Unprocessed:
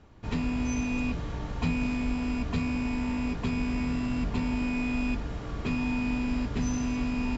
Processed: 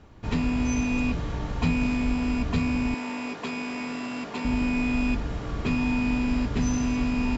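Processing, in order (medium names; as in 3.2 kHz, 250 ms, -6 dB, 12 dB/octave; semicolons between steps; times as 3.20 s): 2.94–4.45 s: high-pass 360 Hz 12 dB/octave; trim +4 dB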